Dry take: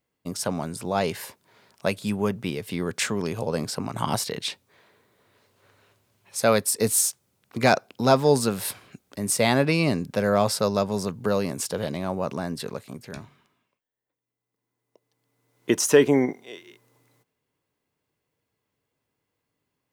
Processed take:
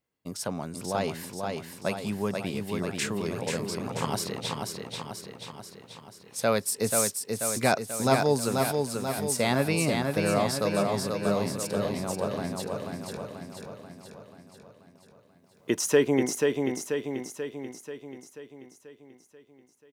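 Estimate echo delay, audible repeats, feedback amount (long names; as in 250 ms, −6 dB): 486 ms, 7, 57%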